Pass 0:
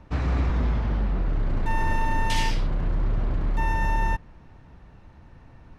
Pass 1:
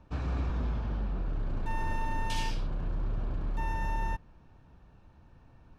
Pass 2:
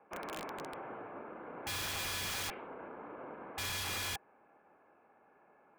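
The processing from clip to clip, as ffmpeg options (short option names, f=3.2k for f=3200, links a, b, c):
-af "bandreject=f=2k:w=5.7,volume=-8dB"
-af "highpass=f=420:t=q:w=0.5412,highpass=f=420:t=q:w=1.307,lowpass=f=2.4k:t=q:w=0.5176,lowpass=f=2.4k:t=q:w=0.7071,lowpass=f=2.4k:t=q:w=1.932,afreqshift=-94,aeval=exprs='(mod(66.8*val(0)+1,2)-1)/66.8':c=same,volume=2.5dB"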